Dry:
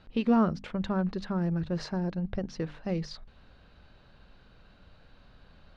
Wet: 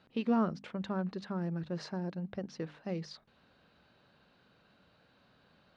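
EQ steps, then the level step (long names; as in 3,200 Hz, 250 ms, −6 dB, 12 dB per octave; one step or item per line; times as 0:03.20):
high-pass filter 150 Hz 12 dB per octave
−5.0 dB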